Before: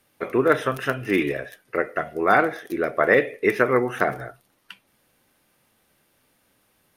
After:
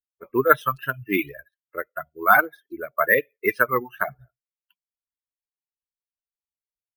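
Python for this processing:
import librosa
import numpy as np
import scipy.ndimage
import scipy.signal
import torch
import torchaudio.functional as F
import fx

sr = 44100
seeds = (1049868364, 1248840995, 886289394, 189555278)

p1 = fx.bin_expand(x, sr, power=2.0)
p2 = fx.dereverb_blind(p1, sr, rt60_s=0.66)
p3 = fx.env_lowpass(p2, sr, base_hz=790.0, full_db=-20.5)
p4 = fx.peak_eq(p3, sr, hz=1400.0, db=9.0, octaves=1.4)
p5 = fx.rider(p4, sr, range_db=10, speed_s=2.0)
p6 = p4 + (p5 * 10.0 ** (2.0 / 20.0))
p7 = np.repeat(scipy.signal.resample_poly(p6, 1, 3), 3)[:len(p6)]
y = p7 * 10.0 ** (-9.5 / 20.0)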